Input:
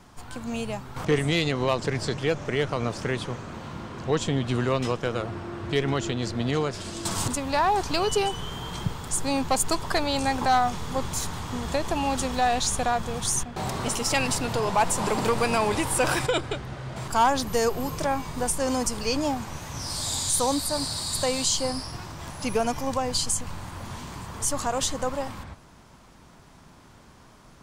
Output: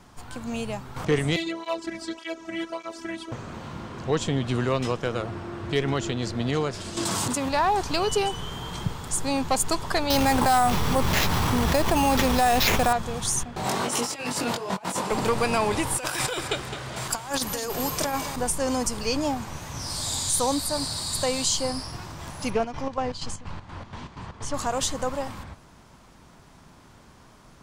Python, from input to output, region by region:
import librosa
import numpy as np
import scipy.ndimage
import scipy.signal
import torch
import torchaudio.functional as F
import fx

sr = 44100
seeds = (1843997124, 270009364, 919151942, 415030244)

y = fx.chain(x, sr, fx.highpass(hz=49.0, slope=12),
    fx.robotise(hz=329.0),
    fx.flanger_cancel(hz=1.7, depth_ms=2.5), at=(1.36, 3.32))
y = fx.chain(y, sr, fx.highpass(hz=110.0, slope=12),
    fx.env_flatten(amount_pct=100), at=(6.97, 7.49))
y = fx.chain(y, sr, fx.sample_hold(seeds[0], rate_hz=9100.0, jitter_pct=0),
    fx.env_flatten(amount_pct=70), at=(10.1, 12.93))
y = fx.chain(y, sr, fx.highpass(hz=190.0, slope=12),
    fx.over_compress(threshold_db=-30.0, ratio=-0.5),
    fx.doubler(ms=21.0, db=-2.5), at=(13.64, 15.11))
y = fx.chain(y, sr, fx.tilt_eq(slope=2.0),
    fx.over_compress(threshold_db=-27.0, ratio=-0.5),
    fx.echo_feedback(ms=212, feedback_pct=39, wet_db=-10.5), at=(15.97, 18.36))
y = fx.chain(y, sr, fx.lowpass(hz=4300.0, slope=12),
    fx.chopper(hz=4.2, depth_pct=65, duty_pct=60),
    fx.doppler_dist(depth_ms=0.13), at=(22.5, 24.54))